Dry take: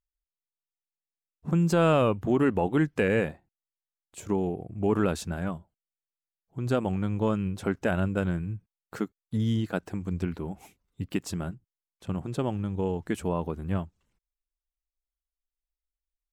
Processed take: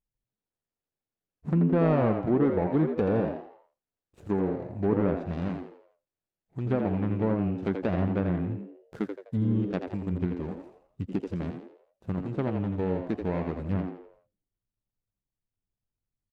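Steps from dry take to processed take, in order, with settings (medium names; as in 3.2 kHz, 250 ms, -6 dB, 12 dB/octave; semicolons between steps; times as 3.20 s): median filter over 41 samples; low-pass that closes with the level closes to 1.5 kHz, closed at -22 dBFS; frequency-shifting echo 84 ms, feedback 39%, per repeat +88 Hz, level -7 dB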